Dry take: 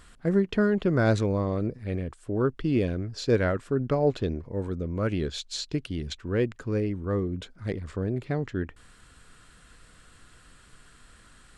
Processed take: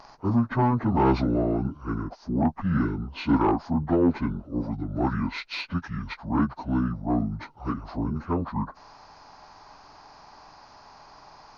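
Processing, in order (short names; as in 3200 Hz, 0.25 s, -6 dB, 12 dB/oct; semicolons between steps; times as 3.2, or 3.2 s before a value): pitch shift by moving bins -9 st; band shelf 2400 Hz -8.5 dB 1.2 oct; overdrive pedal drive 20 dB, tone 2000 Hz, clips at -10 dBFS; spectral gain 2.85–3.07, 480–1200 Hz -9 dB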